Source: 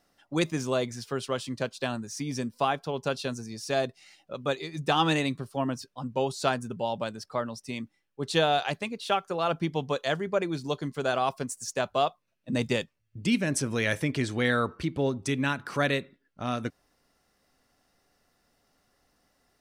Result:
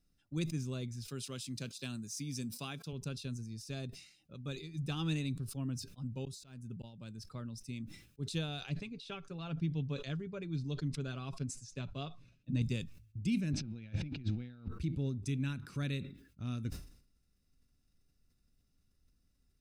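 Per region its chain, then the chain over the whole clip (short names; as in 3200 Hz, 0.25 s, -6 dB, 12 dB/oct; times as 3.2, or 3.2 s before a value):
1.08–2.93 HPF 140 Hz + high shelf 2800 Hz +10 dB
6.25–7.18 de-esser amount 80% + auto swell 0.352 s
8.69–12.62 LPF 5000 Hz + comb 7.1 ms, depth 41%
13.53–14.68 zero-crossing step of -36.5 dBFS + speaker cabinet 110–3900 Hz, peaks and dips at 220 Hz +3 dB, 420 Hz -7 dB, 780 Hz +8 dB, 1100 Hz -9 dB, 1900 Hz -6 dB, 3200 Hz -5 dB + negative-ratio compressor -35 dBFS, ratio -0.5
whole clip: passive tone stack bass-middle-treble 10-0-1; comb 0.8 ms, depth 34%; sustainer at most 91 dB/s; gain +8.5 dB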